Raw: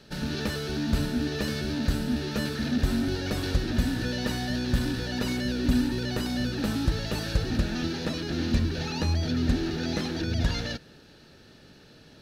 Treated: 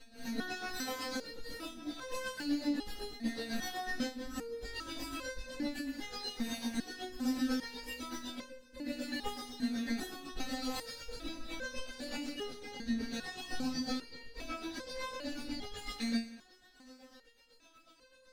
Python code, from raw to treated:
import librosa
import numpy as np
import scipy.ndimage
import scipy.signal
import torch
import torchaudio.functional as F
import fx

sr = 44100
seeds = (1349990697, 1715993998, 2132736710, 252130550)

p1 = fx.lower_of_two(x, sr, delay_ms=7.6)
p2 = fx.peak_eq(p1, sr, hz=650.0, db=7.0, octaves=0.22)
p3 = p2 + 0.89 * np.pad(p2, (int(3.9 * sr / 1000.0), 0))[:len(p2)]
p4 = fx.over_compress(p3, sr, threshold_db=-26.0, ratio=-0.5)
p5 = fx.chopper(p4, sr, hz=12.0, depth_pct=65, duty_pct=30)
p6 = fx.stretch_vocoder_free(p5, sr, factor=1.5)
p7 = p6 + fx.echo_feedback(p6, sr, ms=179, feedback_pct=56, wet_db=-20, dry=0)
p8 = fx.resonator_held(p7, sr, hz=2.5, low_hz=230.0, high_hz=520.0)
y = p8 * librosa.db_to_amplitude(10.5)